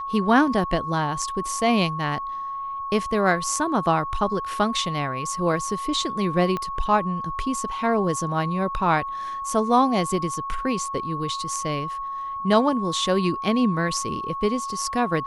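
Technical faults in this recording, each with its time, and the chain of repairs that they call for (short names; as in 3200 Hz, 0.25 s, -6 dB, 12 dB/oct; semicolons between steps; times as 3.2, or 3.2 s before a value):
tone 1100 Hz -28 dBFS
6.57 pop -15 dBFS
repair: de-click; notch 1100 Hz, Q 30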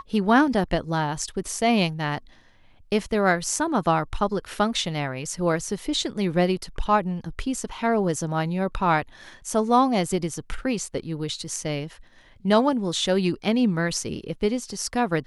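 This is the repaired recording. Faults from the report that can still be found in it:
6.57 pop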